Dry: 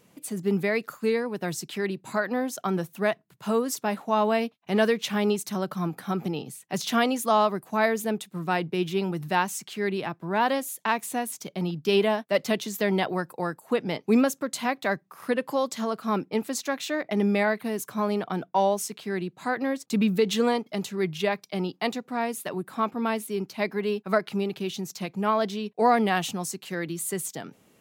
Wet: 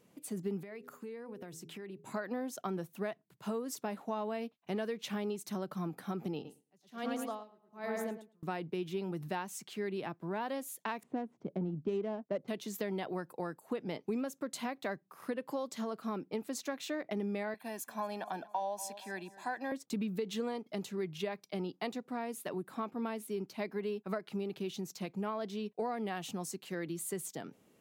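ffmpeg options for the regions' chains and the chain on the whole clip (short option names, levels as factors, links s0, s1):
-filter_complex "[0:a]asettb=1/sr,asplit=3[s0][s1][s2];[s0]atrim=end=0.634[s3];[s1]atrim=start=0.63:end=2.14,asetpts=PTS-STARTPTS,afade=t=in:d=0.004:c=qsin,afade=t=out:st=1.506:d=0.004:c=qsin,equalizer=f=4400:w=2.8:g=-5.5,bandreject=f=82.15:t=h:w=4,bandreject=f=164.3:t=h:w=4,bandreject=f=246.45:t=h:w=4,bandreject=f=328.6:t=h:w=4,bandreject=f=410.75:t=h:w=4,bandreject=f=492.9:t=h:w=4,acompressor=threshold=0.0158:ratio=8:attack=3.2:release=140:knee=1:detection=peak[s4];[s2]atrim=start=2.136[s5];[s3][s4]acrossfade=d=0.004:c1=hsin:c2=qsin[s6];[s6][s5]acrossfade=d=0.004:c1=qsin:c2=hsin,asettb=1/sr,asplit=3[s7][s8][s9];[s7]atrim=end=6.344[s10];[s8]atrim=start=6.34:end=8.43,asetpts=PTS-STARTPTS,afade=t=in:d=0.004:c=qsin,afade=t=out:st=2.086:d=0.004:c=qsin,agate=range=0.0224:threshold=0.00631:ratio=3:release=100:detection=peak,asplit=2[s11][s12];[s12]adelay=108,lowpass=f=3100:p=1,volume=0.631,asplit=2[s13][s14];[s14]adelay=108,lowpass=f=3100:p=1,volume=0.44,asplit=2[s15][s16];[s16]adelay=108,lowpass=f=3100:p=1,volume=0.44,asplit=2[s17][s18];[s18]adelay=108,lowpass=f=3100:p=1,volume=0.44,asplit=2[s19][s20];[s20]adelay=108,lowpass=f=3100:p=1,volume=0.44,asplit=2[s21][s22];[s22]adelay=108,lowpass=f=3100:p=1,volume=0.44[s23];[s11][s13][s15][s17][s19][s21][s23]amix=inputs=7:normalize=0,atrim=end_sample=92169,aeval=exprs='val(0)*pow(10,-35*(0.5-0.5*cos(2*PI*1.2*n/s))/20)':c=same[s24];[s9]atrim=start=8.426[s25];[s10][s24]acrossfade=d=0.004:c1=hsin:c2=qsin[s26];[s26][s25]acrossfade=d=0.004:c1=qsin:c2=hsin,asettb=1/sr,asplit=3[s27][s28][s29];[s27]atrim=end=11.034[s30];[s28]atrim=start=11.03:end=12.48,asetpts=PTS-STARTPTS,afade=t=in:d=0.004:c=qsin,afade=t=out:st=1.446:d=0.004:c=qsin,tiltshelf=f=1100:g=6.5,adynamicsmooth=sensitivity=2:basefreq=1200[s31];[s29]atrim=start=12.476[s32];[s30][s31]acrossfade=d=0.004:c1=hsin:c2=qsin[s33];[s33][s32]acrossfade=d=0.004:c1=qsin:c2=hsin,asettb=1/sr,asplit=3[s34][s35][s36];[s34]atrim=end=17.544[s37];[s35]atrim=start=17.54:end=19.72,asetpts=PTS-STARTPTS,afade=t=in:d=0.004:c=qsin,afade=t=out:st=2.176:d=0.004:c=qsin,highpass=380,aecho=1:1:1.2:0.68,atrim=end_sample=96138,aecho=1:1:234|468|702:0.106|0.0413|0.0161,atrim=end_sample=96138[s38];[s36]atrim=start=19.716[s39];[s37][s38]acrossfade=d=0.004:c1=hsin:c2=qsin[s40];[s40][s39]acrossfade=d=0.004:c1=qsin:c2=hsin,equalizer=f=350:t=o:w=2.1:g=4.5,acompressor=threshold=0.0631:ratio=6,volume=0.355"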